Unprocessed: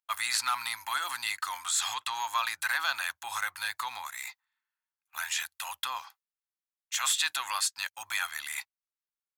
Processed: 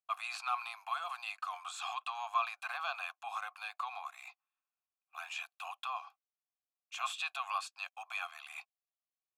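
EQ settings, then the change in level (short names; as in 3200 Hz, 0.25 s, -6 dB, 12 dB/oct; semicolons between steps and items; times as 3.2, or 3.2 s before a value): vowel filter a; HPF 510 Hz 12 dB/oct; high shelf 7500 Hz +6 dB; +6.0 dB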